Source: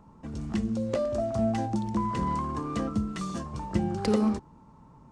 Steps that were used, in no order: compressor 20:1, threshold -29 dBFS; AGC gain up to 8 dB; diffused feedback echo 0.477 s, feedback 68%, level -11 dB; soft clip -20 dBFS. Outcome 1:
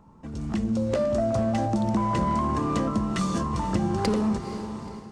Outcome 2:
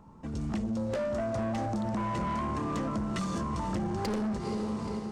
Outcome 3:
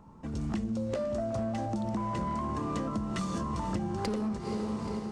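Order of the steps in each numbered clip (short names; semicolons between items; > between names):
soft clip > compressor > diffused feedback echo > AGC; diffused feedback echo > AGC > soft clip > compressor; diffused feedback echo > soft clip > AGC > compressor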